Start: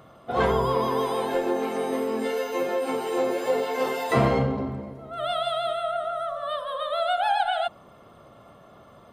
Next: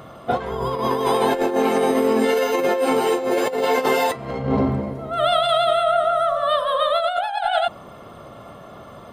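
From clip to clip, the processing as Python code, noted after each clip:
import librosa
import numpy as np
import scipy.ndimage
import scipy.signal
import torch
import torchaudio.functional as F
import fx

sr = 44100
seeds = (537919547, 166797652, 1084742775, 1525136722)

y = fx.over_compress(x, sr, threshold_db=-27.0, ratio=-0.5)
y = F.gain(torch.from_numpy(y), 8.0).numpy()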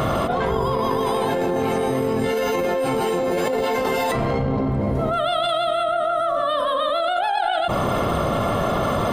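y = fx.octave_divider(x, sr, octaves=1, level_db=-4.0)
y = fx.env_flatten(y, sr, amount_pct=100)
y = F.gain(torch.from_numpy(y), -5.5).numpy()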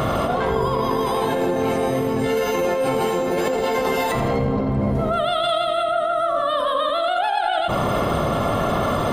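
y = fx.echo_feedback(x, sr, ms=83, feedback_pct=51, wet_db=-10)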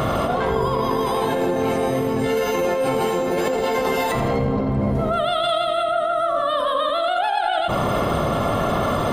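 y = x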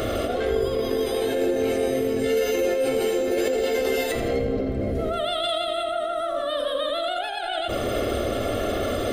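y = fx.fixed_phaser(x, sr, hz=400.0, stages=4)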